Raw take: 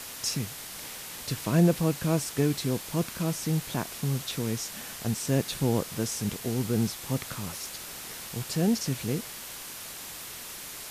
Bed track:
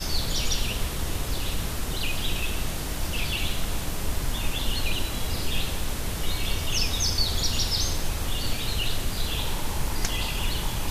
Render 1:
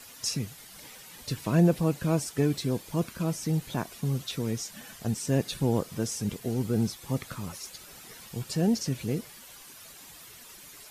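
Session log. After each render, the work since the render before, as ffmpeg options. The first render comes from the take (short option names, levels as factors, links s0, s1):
-af "afftdn=nr=11:nf=-41"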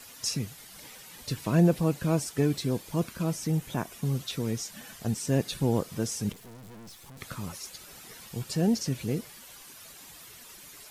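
-filter_complex "[0:a]asettb=1/sr,asplit=3[s0][s1][s2];[s0]atrim=end=3.474[s3];[s1]atrim=start=3.47:end=4.02,asetpts=PTS-STARTPTS,afade=t=in:d=0.004:c=qsin,afade=t=out:st=0.546:d=0.004:c=qsin,equalizer=f=4300:w=3.8:g=-6.5[s4];[s2]atrim=start=4.016[s5];[s3][s4]acrossfade=d=0.004:c1=hsin:c2=qsin[s6];[s6][s5]acrossfade=d=0.004:c1=qsin:c2=hsin,asettb=1/sr,asplit=3[s7][s8][s9];[s7]atrim=end=6.324[s10];[s8]atrim=start=6.32:end=7.21,asetpts=PTS-STARTPTS,afade=t=in:d=0.004:c=qsin,afade=t=out:st=0.886:d=0.004:c=qsin,aeval=exprs='(tanh(200*val(0)+0.5)-tanh(0.5))/200':c=same[s11];[s9]atrim=start=7.206[s12];[s10][s11]acrossfade=d=0.004:c1=hsin:c2=qsin[s13];[s13][s12]acrossfade=d=0.004:c1=qsin:c2=hsin"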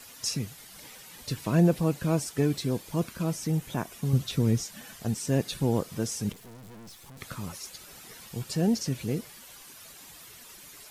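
-filter_complex "[0:a]asettb=1/sr,asplit=3[s0][s1][s2];[s0]atrim=end=4.134[s3];[s1]atrim=start=4.13:end=4.65,asetpts=PTS-STARTPTS,afade=t=in:d=0.004:c=qsin,afade=t=out:st=0.516:d=0.004:c=qsin,lowshelf=f=260:g=10.5[s4];[s2]atrim=start=4.646[s5];[s3][s4]acrossfade=d=0.004:c1=hsin:c2=qsin[s6];[s6][s5]acrossfade=d=0.004:c1=qsin:c2=hsin"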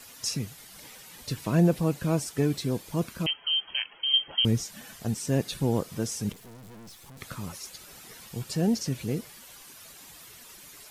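-filter_complex "[0:a]asettb=1/sr,asplit=3[s0][s1][s2];[s0]atrim=end=3.264[s3];[s1]atrim=start=3.26:end=4.45,asetpts=PTS-STARTPTS,afade=t=in:d=0.004:c=qsin,afade=t=out:st=1.186:d=0.004:c=qsin,lowpass=f=2800:t=q:w=0.5098,lowpass=f=2800:t=q:w=0.6013,lowpass=f=2800:t=q:w=0.9,lowpass=f=2800:t=q:w=2.563,afreqshift=-3300[s4];[s2]atrim=start=4.446[s5];[s3][s4]acrossfade=d=0.004:c1=hsin:c2=qsin[s6];[s6][s5]acrossfade=d=0.004:c1=qsin:c2=hsin"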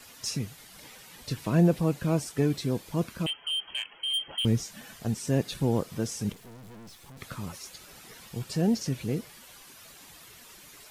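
-filter_complex "[0:a]acrossover=split=740|5000[s0][s1][s2];[s1]asoftclip=type=tanh:threshold=0.0447[s3];[s2]flanger=delay=22.5:depth=4.3:speed=1.8[s4];[s0][s3][s4]amix=inputs=3:normalize=0"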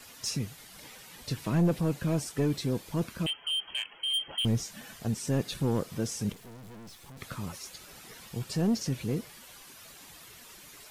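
-af "asoftclip=type=tanh:threshold=0.112"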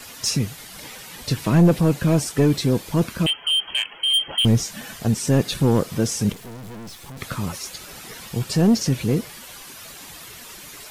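-af "volume=3.35"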